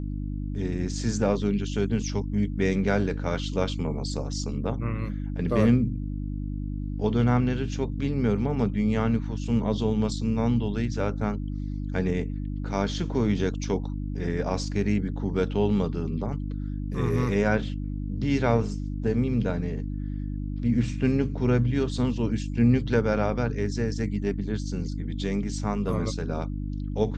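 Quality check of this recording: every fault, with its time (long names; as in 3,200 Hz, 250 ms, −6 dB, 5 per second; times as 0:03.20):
mains hum 50 Hz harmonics 6 −31 dBFS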